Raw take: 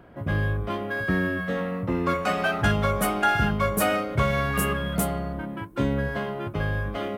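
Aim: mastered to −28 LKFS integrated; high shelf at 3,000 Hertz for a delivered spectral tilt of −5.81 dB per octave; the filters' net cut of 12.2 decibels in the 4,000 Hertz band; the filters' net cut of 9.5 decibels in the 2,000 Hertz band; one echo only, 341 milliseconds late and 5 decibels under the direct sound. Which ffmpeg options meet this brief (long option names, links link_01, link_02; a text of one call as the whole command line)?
ffmpeg -i in.wav -af "equalizer=frequency=2000:width_type=o:gain=-9,highshelf=frequency=3000:gain=-9,equalizer=frequency=4000:width_type=o:gain=-6,aecho=1:1:341:0.562,volume=-1.5dB" out.wav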